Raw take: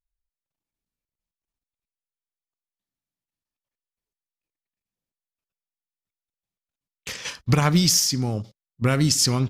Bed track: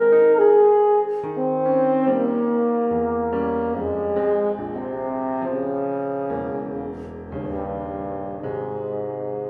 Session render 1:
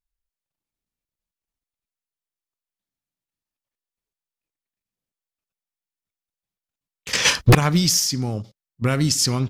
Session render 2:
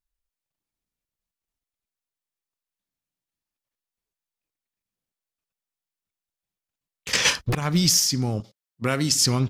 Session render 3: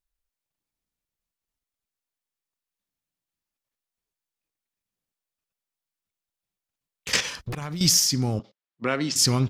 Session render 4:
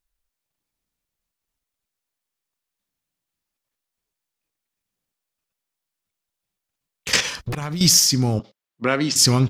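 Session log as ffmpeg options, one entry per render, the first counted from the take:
-filter_complex "[0:a]asettb=1/sr,asplit=3[a][b][c];[a]atrim=end=7.134[d];[b]atrim=start=7.13:end=7.55,asetpts=PTS-STARTPTS,afade=t=in:d=0.004:c=qsin,afade=t=out:st=0.416:d=0.004:c=qsin,aeval=exprs='0.473*sin(PI/2*3.98*val(0)/0.473)':c=same[e];[c]atrim=start=7.546[f];[d][e]acrossfade=d=0.004:c1=hsin:c2=qsin[g];[g][f]acrossfade=d=0.004:c1=qsin:c2=hsin"
-filter_complex "[0:a]asettb=1/sr,asplit=3[a][b][c];[a]atrim=end=8.404[d];[b]atrim=start=8.4:end=9.12,asetpts=PTS-STARTPTS,afade=t=in:d=0.004:c=qsin,afade=t=out:st=0.716:d=0.004:c=qsin,highpass=f=270:p=1[e];[c]atrim=start=9.116[f];[d][e]acrossfade=d=0.004:c1=hsin:c2=qsin[g];[g][f]acrossfade=d=0.004:c1=qsin:c2=hsin,asplit=2[h][i];[h]atrim=end=7.52,asetpts=PTS-STARTPTS,afade=t=out:st=7.16:d=0.36:silence=0.199526[j];[i]atrim=start=7.52,asetpts=PTS-STARTPTS,afade=t=in:d=0.36:silence=0.199526[k];[j][k]concat=n=2:v=0:a=1"
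-filter_complex "[0:a]asettb=1/sr,asplit=3[a][b][c];[a]atrim=end=7.204[d];[b]atrim=start=7.2:end=7.81,asetpts=PTS-STARTPTS,afade=t=in:d=0.004:c=qsin,afade=t=out:st=0.606:d=0.004:c=qsin,acompressor=threshold=-29dB:ratio=8:attack=3.2:release=140:knee=1:detection=peak[e];[c]atrim=start=7.806[f];[d][e]acrossfade=d=0.004:c1=hsin:c2=qsin[g];[g][f]acrossfade=d=0.004:c1=qsin:c2=hsin,asettb=1/sr,asplit=3[h][i][j];[h]atrim=end=8.394[k];[i]atrim=start=8.39:end=9.16,asetpts=PTS-STARTPTS,afade=t=in:d=0.004:c=qsin,afade=t=out:st=0.766:d=0.004:c=qsin,highpass=220,lowpass=3.6k[l];[j]atrim=start=9.156[m];[k][l]acrossfade=d=0.004:c1=hsin:c2=qsin[n];[n][m]acrossfade=d=0.004:c1=qsin:c2=hsin"
-af "volume=5dB,alimiter=limit=-3dB:level=0:latency=1"

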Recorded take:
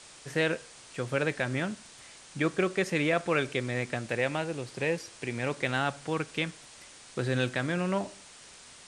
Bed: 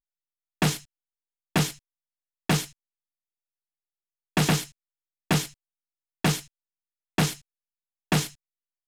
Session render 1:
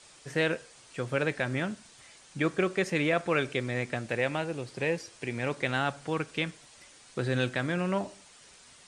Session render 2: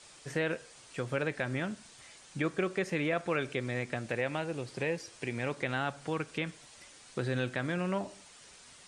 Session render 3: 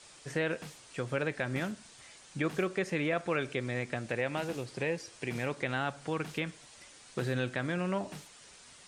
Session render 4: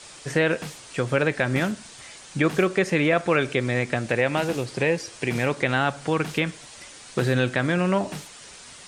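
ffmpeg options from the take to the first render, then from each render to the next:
-af "afftdn=nr=6:nf=-52"
-filter_complex "[0:a]acrossover=split=2800[a][b];[b]alimiter=level_in=10dB:limit=-24dB:level=0:latency=1,volume=-10dB[c];[a][c]amix=inputs=2:normalize=0,acompressor=threshold=-34dB:ratio=1.5"
-filter_complex "[1:a]volume=-24dB[a];[0:a][a]amix=inputs=2:normalize=0"
-af "volume=10.5dB"

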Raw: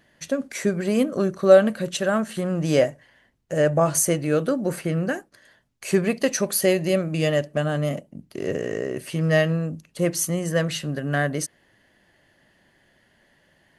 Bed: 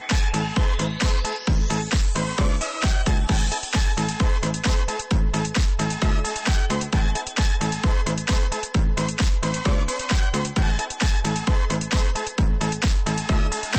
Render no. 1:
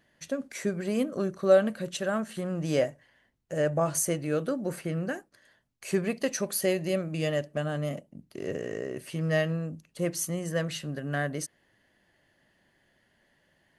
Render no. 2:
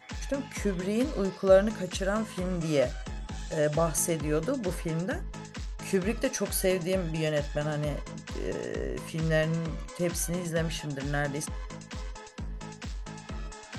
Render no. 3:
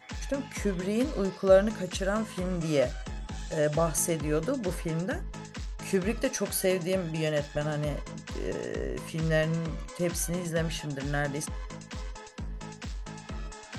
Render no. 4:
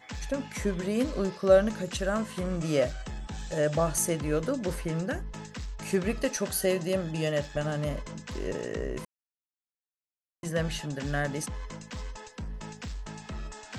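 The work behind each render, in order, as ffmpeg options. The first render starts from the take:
-af "volume=-7dB"
-filter_complex "[1:a]volume=-18dB[a];[0:a][a]amix=inputs=2:normalize=0"
-filter_complex "[0:a]asettb=1/sr,asplit=3[a][b][c];[a]atrim=end=6.384[d];[b]atrim=start=6.38:end=7.56,asetpts=PTS-STARTPTS,afade=t=in:d=0.004:c=qsin,afade=t=out:st=1.176:d=0.004:c=qsin,highpass=88[e];[c]atrim=start=7.556[f];[d][e]acrossfade=d=0.004:c1=hsin:c2=qsin[g];[g][f]acrossfade=d=0.004:c1=qsin:c2=hsin"
-filter_complex "[0:a]asettb=1/sr,asplit=3[a][b][c];[a]atrim=end=6.444[d];[b]atrim=start=6.44:end=7.31,asetpts=PTS-STARTPTS,afade=t=in:d=0.004:c=qsin,afade=t=out:st=0.866:d=0.004:c=qsin,bandreject=f=2.3k:w=9.8[e];[c]atrim=start=7.306[f];[d][e]acrossfade=d=0.004:c1=hsin:c2=qsin[g];[g][f]acrossfade=d=0.004:c1=qsin:c2=hsin,asplit=3[h][i][j];[h]atrim=end=9.05,asetpts=PTS-STARTPTS,afade=t=out:st=9.046:d=0.004:c=hsin[k];[i]atrim=start=9.05:end=10.43,asetpts=PTS-STARTPTS,volume=0[l];[j]atrim=start=10.43,asetpts=PTS-STARTPTS,afade=t=in:d=0.004:c=hsin[m];[k][l][m]concat=n=3:v=0:a=1"

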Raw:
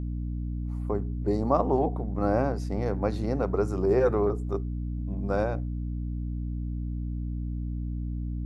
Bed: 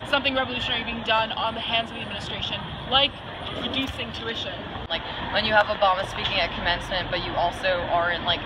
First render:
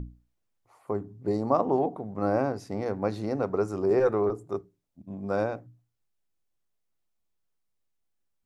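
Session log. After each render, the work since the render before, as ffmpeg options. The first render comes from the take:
-af "bandreject=f=60:t=h:w=6,bandreject=f=120:t=h:w=6,bandreject=f=180:t=h:w=6,bandreject=f=240:t=h:w=6,bandreject=f=300:t=h:w=6"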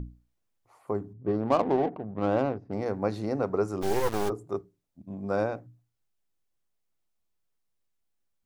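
-filter_complex "[0:a]asettb=1/sr,asplit=3[a][b][c];[a]atrim=end=1.134[d];[b]atrim=start=1.13:end=2.73,asetpts=PTS-STARTPTS,afade=t=in:d=0.004:c=qsin,afade=t=out:st=1.596:d=0.004:c=qsin,adynamicsmooth=sensitivity=2.5:basefreq=640[e];[c]atrim=start=2.726[f];[d][e]acrossfade=d=0.004:c1=hsin:c2=qsin[g];[g][f]acrossfade=d=0.004:c1=qsin:c2=hsin,asplit=3[h][i][j];[h]afade=t=out:st=3.81:d=0.02[k];[i]acrusher=bits=3:dc=4:mix=0:aa=0.000001,afade=t=in:st=3.81:d=0.02,afade=t=out:st=4.28:d=0.02[l];[j]afade=t=in:st=4.28:d=0.02[m];[k][l][m]amix=inputs=3:normalize=0"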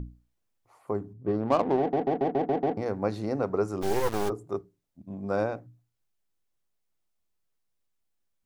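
-filter_complex "[0:a]asplit=8[a][b][c][d][e][f][g][h];[a]atrim=end=1.932[i];[b]atrim=start=1.788:end=1.932[j];[c]atrim=start=1.788:end=1.932[k];[d]atrim=start=1.788:end=1.932[l];[e]atrim=start=1.788:end=1.932[m];[f]atrim=start=1.788:end=1.932[n];[g]atrim=start=1.788:end=1.932[o];[h]atrim=start=2.768[p];[i][j]acrossfade=d=0.004:c1=hsin:c2=hsin[q];[q][k]acrossfade=d=0.004:c1=hsin:c2=hsin[r];[r][l]acrossfade=d=0.004:c1=hsin:c2=hsin[s];[s][m]acrossfade=d=0.004:c1=hsin:c2=hsin[t];[t][n]acrossfade=d=0.004:c1=hsin:c2=hsin[u];[u][o]acrossfade=d=0.004:c1=hsin:c2=hsin[v];[v][p]acrossfade=d=0.004:c1=hsin:c2=hsin"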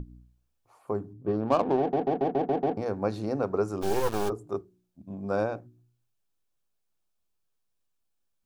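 -af "bandreject=f=2k:w=7.6,bandreject=f=60.74:t=h:w=4,bandreject=f=121.48:t=h:w=4,bandreject=f=182.22:t=h:w=4,bandreject=f=242.96:t=h:w=4,bandreject=f=303.7:t=h:w=4,bandreject=f=364.44:t=h:w=4"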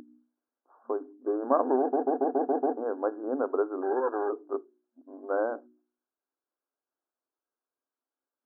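-af "afftfilt=real='re*between(b*sr/4096,230,1700)':imag='im*between(b*sr/4096,230,1700)':win_size=4096:overlap=0.75"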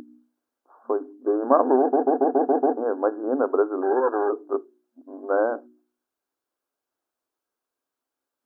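-af "volume=6.5dB"

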